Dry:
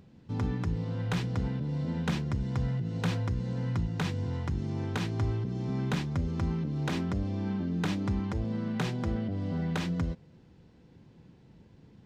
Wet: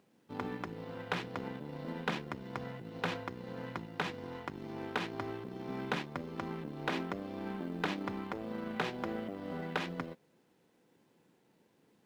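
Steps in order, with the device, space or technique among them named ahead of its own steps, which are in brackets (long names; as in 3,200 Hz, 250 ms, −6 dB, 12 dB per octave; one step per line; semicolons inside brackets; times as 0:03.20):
phone line with mismatched companding (band-pass filter 340–3,400 Hz; mu-law and A-law mismatch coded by A)
level +3.5 dB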